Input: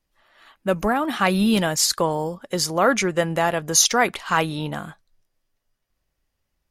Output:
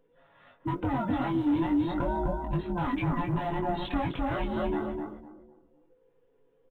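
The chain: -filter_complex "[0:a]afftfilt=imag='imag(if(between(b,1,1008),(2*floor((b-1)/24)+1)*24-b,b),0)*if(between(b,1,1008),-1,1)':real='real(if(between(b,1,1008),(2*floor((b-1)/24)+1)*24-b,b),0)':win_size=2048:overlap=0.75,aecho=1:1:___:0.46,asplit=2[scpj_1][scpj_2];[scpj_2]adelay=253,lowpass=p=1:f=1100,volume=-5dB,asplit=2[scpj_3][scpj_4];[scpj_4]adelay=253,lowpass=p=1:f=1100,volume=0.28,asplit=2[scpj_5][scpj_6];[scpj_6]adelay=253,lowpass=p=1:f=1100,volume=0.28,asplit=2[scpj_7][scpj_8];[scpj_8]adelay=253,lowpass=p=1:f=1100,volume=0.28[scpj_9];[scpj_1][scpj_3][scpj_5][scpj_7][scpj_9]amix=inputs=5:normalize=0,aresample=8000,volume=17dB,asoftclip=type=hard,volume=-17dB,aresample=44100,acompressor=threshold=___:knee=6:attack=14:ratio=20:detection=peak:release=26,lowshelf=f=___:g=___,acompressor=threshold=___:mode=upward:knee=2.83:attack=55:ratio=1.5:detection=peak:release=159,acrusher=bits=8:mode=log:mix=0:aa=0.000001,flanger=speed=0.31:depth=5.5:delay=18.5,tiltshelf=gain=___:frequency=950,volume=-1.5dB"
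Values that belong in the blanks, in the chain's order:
7.2, -27dB, 190, -4, -52dB, 8.5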